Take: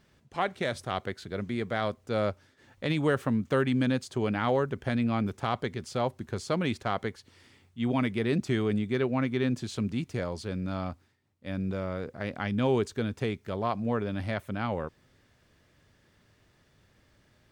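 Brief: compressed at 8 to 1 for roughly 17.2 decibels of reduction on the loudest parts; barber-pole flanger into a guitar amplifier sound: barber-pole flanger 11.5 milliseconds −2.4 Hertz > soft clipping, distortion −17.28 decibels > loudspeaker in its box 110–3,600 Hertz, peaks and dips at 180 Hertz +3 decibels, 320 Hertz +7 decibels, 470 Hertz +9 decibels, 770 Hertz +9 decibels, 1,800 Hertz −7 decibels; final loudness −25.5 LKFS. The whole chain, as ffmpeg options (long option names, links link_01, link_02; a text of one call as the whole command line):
ffmpeg -i in.wav -filter_complex "[0:a]acompressor=threshold=-40dB:ratio=8,asplit=2[link_01][link_02];[link_02]adelay=11.5,afreqshift=-2.4[link_03];[link_01][link_03]amix=inputs=2:normalize=1,asoftclip=threshold=-39dB,highpass=110,equalizer=frequency=180:width_type=q:width=4:gain=3,equalizer=frequency=320:width_type=q:width=4:gain=7,equalizer=frequency=470:width_type=q:width=4:gain=9,equalizer=frequency=770:width_type=q:width=4:gain=9,equalizer=frequency=1800:width_type=q:width=4:gain=-7,lowpass=frequency=3600:width=0.5412,lowpass=frequency=3600:width=1.3066,volume=19.5dB" out.wav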